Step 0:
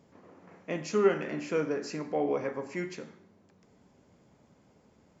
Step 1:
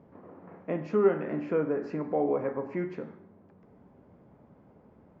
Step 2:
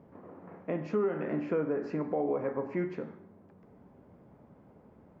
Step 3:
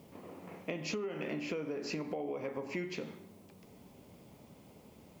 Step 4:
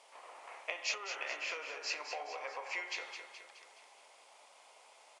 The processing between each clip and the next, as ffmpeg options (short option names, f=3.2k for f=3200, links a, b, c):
-filter_complex "[0:a]lowpass=1.3k,asplit=2[a][b];[b]acompressor=threshold=-37dB:ratio=6,volume=-1dB[c];[a][c]amix=inputs=2:normalize=0"
-af "alimiter=limit=-21.5dB:level=0:latency=1:release=158"
-af "acompressor=threshold=-35dB:ratio=6,aexciter=amount=5.9:drive=8.6:freq=2.4k"
-af "aresample=22050,aresample=44100,highpass=f=740:w=0.5412,highpass=f=740:w=1.3066,aecho=1:1:211|422|633|844|1055|1266:0.398|0.211|0.112|0.0593|0.0314|0.0166,volume=5dB"